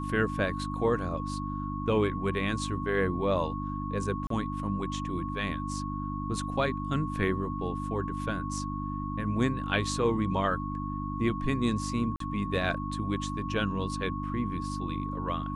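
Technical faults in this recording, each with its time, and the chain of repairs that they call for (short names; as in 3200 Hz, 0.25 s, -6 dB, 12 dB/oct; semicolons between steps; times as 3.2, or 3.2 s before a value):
hum 50 Hz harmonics 6 -35 dBFS
tone 1100 Hz -37 dBFS
4.27–4.3 gap 33 ms
12.16–12.2 gap 43 ms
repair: notch 1100 Hz, Q 30; de-hum 50 Hz, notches 6; interpolate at 4.27, 33 ms; interpolate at 12.16, 43 ms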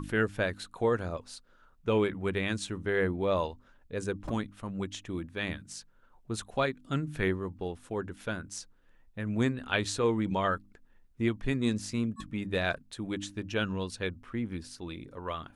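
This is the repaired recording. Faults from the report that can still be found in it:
none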